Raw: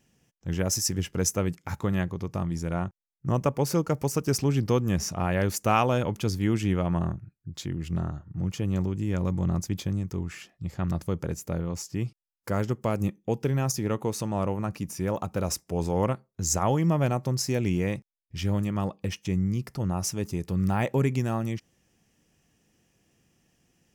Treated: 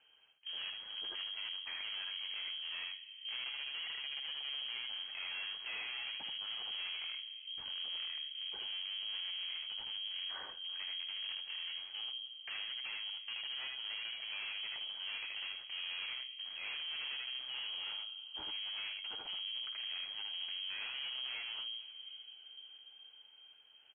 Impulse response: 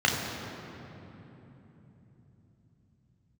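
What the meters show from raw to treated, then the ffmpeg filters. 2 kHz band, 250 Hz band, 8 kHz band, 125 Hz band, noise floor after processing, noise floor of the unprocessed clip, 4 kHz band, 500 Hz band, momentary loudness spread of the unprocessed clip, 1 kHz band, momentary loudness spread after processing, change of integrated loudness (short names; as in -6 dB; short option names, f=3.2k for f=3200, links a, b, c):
-4.0 dB, under -40 dB, under -40 dB, under -40 dB, -59 dBFS, -79 dBFS, +5.5 dB, -35.0 dB, 8 LU, -23.0 dB, 5 LU, -11.5 dB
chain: -filter_complex "[0:a]equalizer=f=940:w=0.89:g=8,bandreject=f=57.02:t=h:w=4,bandreject=f=114.04:t=h:w=4,acompressor=threshold=-29dB:ratio=6,flanger=delay=7.1:depth=9.4:regen=62:speed=0.16:shape=sinusoidal,aecho=1:1:58|78:0.168|0.668,aphaser=in_gain=1:out_gain=1:delay=2.9:decay=0.21:speed=0.88:type=sinusoidal,asplit=2[a][b];[1:a]atrim=start_sample=2205,adelay=51[c];[b][c]afir=irnorm=-1:irlink=0,volume=-32.5dB[d];[a][d]amix=inputs=2:normalize=0,aeval=exprs='(tanh(141*val(0)+0.45)-tanh(0.45))/141':c=same,lowpass=f=2.8k:t=q:w=0.5098,lowpass=f=2.8k:t=q:w=0.6013,lowpass=f=2.8k:t=q:w=0.9,lowpass=f=2.8k:t=q:w=2.563,afreqshift=-3300,volume=2dB"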